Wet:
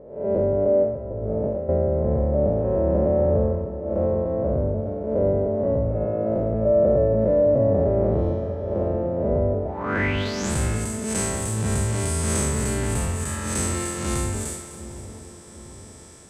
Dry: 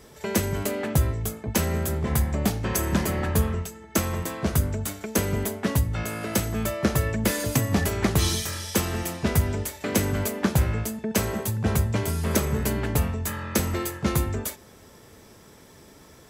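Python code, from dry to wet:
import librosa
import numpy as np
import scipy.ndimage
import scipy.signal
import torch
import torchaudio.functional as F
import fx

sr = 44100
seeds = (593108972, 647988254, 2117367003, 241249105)

p1 = fx.spec_blur(x, sr, span_ms=181.0)
p2 = fx.over_compress(p1, sr, threshold_db=-34.0, ratio=-1.0, at=(0.83, 1.69))
p3 = fx.notch(p2, sr, hz=4800.0, q=14.0, at=(5.21, 5.82))
p4 = p3 + fx.echo_split(p3, sr, split_hz=940.0, low_ms=748, high_ms=253, feedback_pct=52, wet_db=-12.5, dry=0)
p5 = fx.filter_sweep_lowpass(p4, sr, from_hz=570.0, to_hz=8400.0, start_s=9.62, end_s=10.52, q=6.2)
y = p5 * librosa.db_to_amplitude(2.0)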